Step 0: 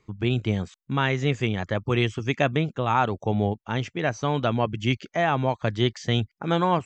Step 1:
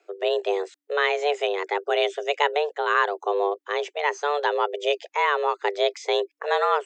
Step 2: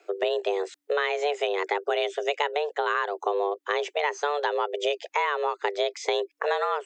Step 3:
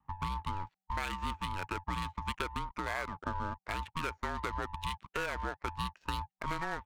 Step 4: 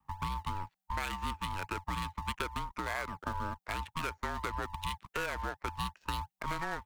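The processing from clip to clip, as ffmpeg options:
-af "equalizer=f=1.6k:w=4.1:g=4.5,afreqshift=290"
-af "acompressor=threshold=-29dB:ratio=6,volume=6dB"
-af "adynamicsmooth=sensitivity=5.5:basefreq=620,aeval=exprs='val(0)*sin(2*PI*480*n/s)':c=same,volume=-7dB"
-filter_complex "[0:a]highshelf=f=9.7k:g=7,acrossover=split=300[a][b];[a]acrusher=samples=32:mix=1:aa=0.000001:lfo=1:lforange=32:lforate=2.8[c];[c][b]amix=inputs=2:normalize=0"

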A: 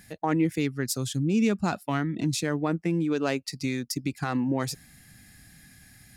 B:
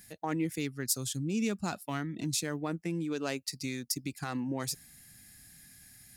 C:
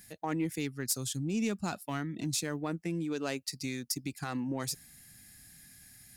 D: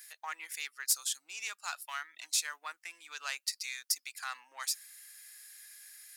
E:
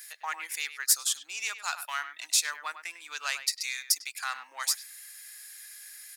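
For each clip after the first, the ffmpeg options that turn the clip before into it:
-af "highshelf=f=4.5k:g=11.5,volume=-8dB"
-af "asoftclip=type=tanh:threshold=-19.5dB"
-af "highpass=f=1.1k:w=0.5412,highpass=f=1.1k:w=1.3066,volume=3dB"
-filter_complex "[0:a]asplit=2[a][b];[b]adelay=100,highpass=300,lowpass=3.4k,asoftclip=type=hard:threshold=-25dB,volume=-11dB[c];[a][c]amix=inputs=2:normalize=0,volume=6dB"

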